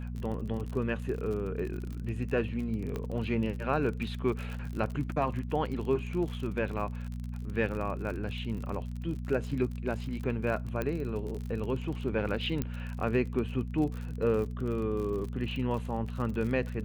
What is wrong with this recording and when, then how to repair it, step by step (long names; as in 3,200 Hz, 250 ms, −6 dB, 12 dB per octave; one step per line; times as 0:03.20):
surface crackle 44 per second −36 dBFS
mains hum 60 Hz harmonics 4 −37 dBFS
0:02.96: click −22 dBFS
0:10.82: click −19 dBFS
0:12.62: click −17 dBFS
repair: click removal
hum removal 60 Hz, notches 4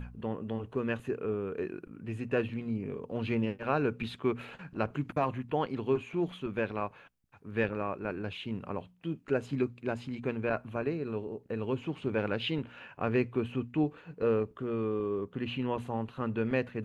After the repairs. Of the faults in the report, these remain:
none of them is left